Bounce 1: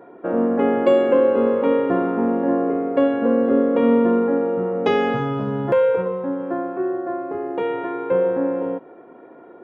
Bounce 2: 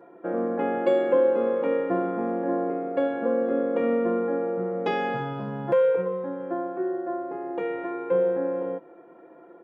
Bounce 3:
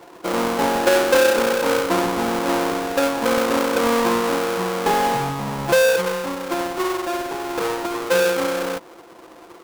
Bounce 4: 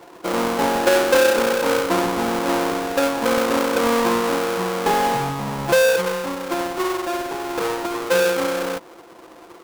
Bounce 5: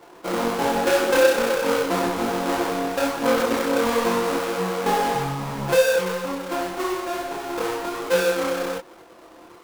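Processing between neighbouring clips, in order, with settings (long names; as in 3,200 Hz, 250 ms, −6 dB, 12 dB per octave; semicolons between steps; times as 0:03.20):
parametric band 66 Hz −12 dB 1.3 octaves; comb filter 5.9 ms, depth 60%; level −7 dB
each half-wave held at its own peak; parametric band 930 Hz +9.5 dB 0.73 octaves
no processing that can be heard
multi-voice chorus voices 4, 1.1 Hz, delay 25 ms, depth 3.7 ms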